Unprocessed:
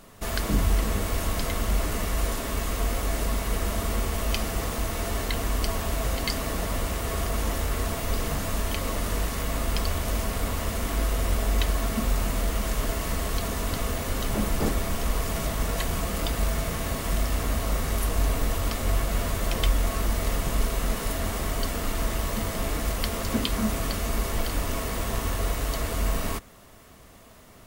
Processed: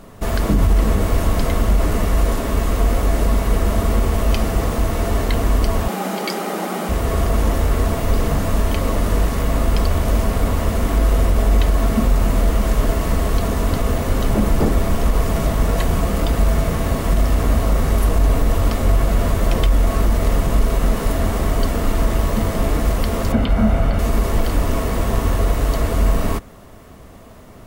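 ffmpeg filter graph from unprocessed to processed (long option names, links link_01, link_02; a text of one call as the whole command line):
ffmpeg -i in.wav -filter_complex "[0:a]asettb=1/sr,asplit=3[link_01][link_02][link_03];[link_01]atrim=end=5.884[link_04];[link_02]atrim=start=5.88:end=6.89,asetpts=PTS-STARTPTS,afade=type=in:duration=0.004:curve=qsin,afade=type=out:start_time=1.006:duration=0.004:curve=qsin,highpass=frequency=200:poles=1,afreqshift=140[link_05];[link_03]atrim=start=6.886[link_06];[link_04][link_05]acrossfade=duration=0.004:curve1=hsin:curve2=qsin[link_07];[link_07][link_06]acrossfade=duration=0.004:curve1=qsin:curve2=hsin,asettb=1/sr,asplit=3[link_08][link_09][link_10];[link_08]atrim=end=23.324[link_11];[link_09]atrim=start=23.32:end=23.99,asetpts=PTS-STARTPTS,afade=type=in:duration=0.004:curve=qsin,afade=type=out:start_time=0.666:duration=0.004:curve=qsin,acrossover=split=3200[link_12][link_13];[link_13]acompressor=threshold=-48dB:ratio=4:attack=1:release=60[link_14];[link_12][link_14]amix=inputs=2:normalize=0,aecho=1:1:1.4:0.45,atrim=end_sample=29547[link_15];[link_10]atrim=start=23.986[link_16];[link_11][link_15]acrossfade=duration=0.004:curve1=hsin:curve2=qsin[link_17];[link_17][link_16]acrossfade=duration=0.004:curve1=qsin:curve2=hsin,tiltshelf=frequency=1400:gain=5,alimiter=level_in=11.5dB:limit=-1dB:release=50:level=0:latency=1,volume=-5.5dB" out.wav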